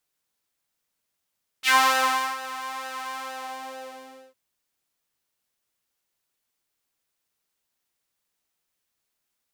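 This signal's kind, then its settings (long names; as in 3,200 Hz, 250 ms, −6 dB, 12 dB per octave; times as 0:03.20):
subtractive patch with pulse-width modulation C4, sub −17.5 dB, filter highpass, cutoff 440 Hz, Q 2.5, filter envelope 3 octaves, filter decay 0.12 s, attack 53 ms, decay 0.68 s, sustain −17.5 dB, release 1.20 s, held 1.51 s, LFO 2.2 Hz, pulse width 42%, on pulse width 19%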